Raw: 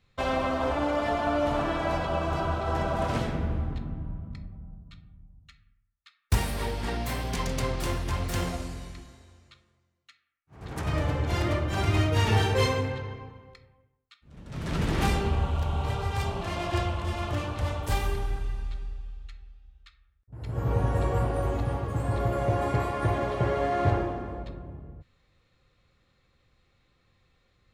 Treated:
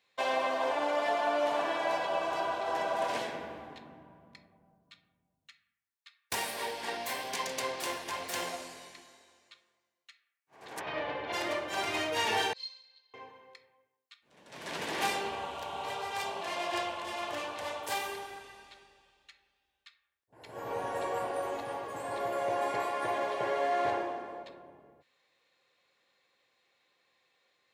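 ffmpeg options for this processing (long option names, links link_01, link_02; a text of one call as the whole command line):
ffmpeg -i in.wav -filter_complex "[0:a]asettb=1/sr,asplit=3[link_01][link_02][link_03];[link_01]atrim=end=1.144[link_04];[link_02]atrim=start=1.14:end=1.65,asetpts=PTS-STARTPTS,afade=type=in:duration=0.004:curve=qsin,afade=type=out:start_time=0.506:duration=0.004:curve=qsin,highpass=110[link_05];[link_03]atrim=start=1.646[link_06];[link_04][link_05]acrossfade=duration=0.004:curve1=hsin:curve2=qsin[link_07];[link_07][link_06]acrossfade=duration=0.004:curve1=qsin:curve2=hsin,asplit=3[link_08][link_09][link_10];[link_08]afade=type=out:start_time=10.79:duration=0.02[link_11];[link_09]lowpass=frequency=3800:width=0.5412,lowpass=frequency=3800:width=1.3066,afade=type=in:start_time=10.79:duration=0.02,afade=type=out:start_time=11.32:duration=0.02[link_12];[link_10]afade=type=in:start_time=11.32:duration=0.02[link_13];[link_11][link_12][link_13]amix=inputs=3:normalize=0,asettb=1/sr,asplit=3[link_14][link_15][link_16];[link_14]atrim=end=12.534[link_17];[link_15]atrim=start=12.53:end=13.14,asetpts=PTS-STARTPTS,afade=type=in:duration=0.004:curve=qsin,afade=type=out:start_time=0.606:duration=0.004:curve=qsin,bandpass=frequency=4300:width_type=q:width=18[link_18];[link_16]atrim=start=13.136[link_19];[link_17][link_18]acrossfade=duration=0.004:curve1=hsin:curve2=qsin[link_20];[link_20][link_19]acrossfade=duration=0.004:curve1=qsin:curve2=hsin,highpass=540,bandreject=frequency=1300:width=5.6" out.wav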